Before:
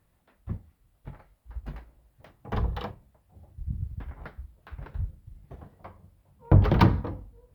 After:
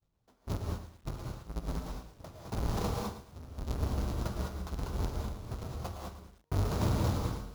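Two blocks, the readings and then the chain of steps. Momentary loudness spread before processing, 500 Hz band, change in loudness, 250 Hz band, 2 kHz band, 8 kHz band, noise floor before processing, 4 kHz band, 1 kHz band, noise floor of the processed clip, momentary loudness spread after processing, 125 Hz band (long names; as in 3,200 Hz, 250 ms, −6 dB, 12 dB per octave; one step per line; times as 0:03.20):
23 LU, −3.5 dB, −9.5 dB, −6.0 dB, −7.0 dB, can't be measured, −69 dBFS, −0.5 dB, −5.5 dB, −71 dBFS, 15 LU, −6.5 dB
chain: each half-wave held at its own peak
flat-topped bell 2,300 Hz −10 dB 1.2 octaves
reversed playback
downward compressor 6 to 1, threshold −32 dBFS, peak gain reduction 21.5 dB
reversed playback
downward expander −52 dBFS
reverb whose tail is shaped and stops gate 230 ms rising, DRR 0 dB
bad sample-rate conversion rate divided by 4×, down none, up hold
feedback echo at a low word length 111 ms, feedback 35%, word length 9 bits, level −11 dB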